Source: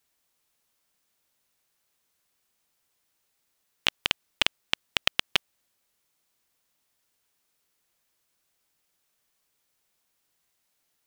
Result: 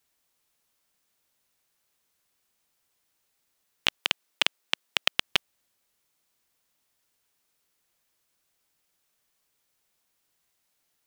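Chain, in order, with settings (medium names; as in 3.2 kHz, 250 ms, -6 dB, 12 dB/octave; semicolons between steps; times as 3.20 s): 3.98–5.16 s: high-pass 250 Hz 12 dB/octave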